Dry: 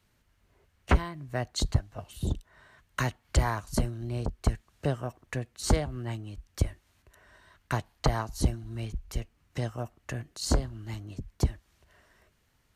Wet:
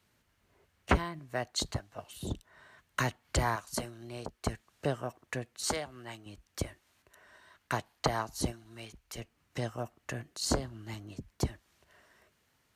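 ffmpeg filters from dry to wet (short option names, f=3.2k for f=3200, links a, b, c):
-af "asetnsamples=n=441:p=0,asendcmd='1.19 highpass f 360;2.29 highpass f 160;3.56 highpass f 630;4.43 highpass f 250;5.64 highpass f 870;6.26 highpass f 290;8.52 highpass f 790;9.18 highpass f 190',highpass=f=130:p=1"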